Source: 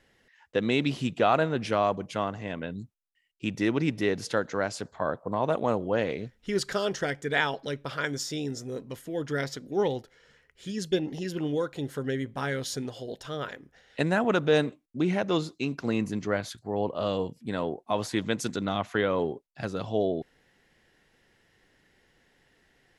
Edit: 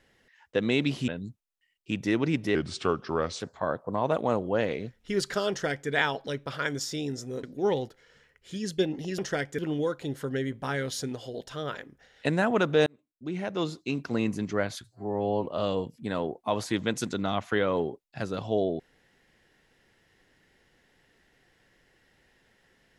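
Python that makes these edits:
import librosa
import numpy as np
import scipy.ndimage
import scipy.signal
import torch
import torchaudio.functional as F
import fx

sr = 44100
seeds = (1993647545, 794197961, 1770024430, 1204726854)

y = fx.edit(x, sr, fx.cut(start_s=1.08, length_s=1.54),
    fx.speed_span(start_s=4.09, length_s=0.7, speed=0.82),
    fx.duplicate(start_s=6.88, length_s=0.4, to_s=11.32),
    fx.cut(start_s=8.82, length_s=0.75),
    fx.fade_in_span(start_s=14.6, length_s=1.08),
    fx.stretch_span(start_s=16.58, length_s=0.31, factor=2.0), tone=tone)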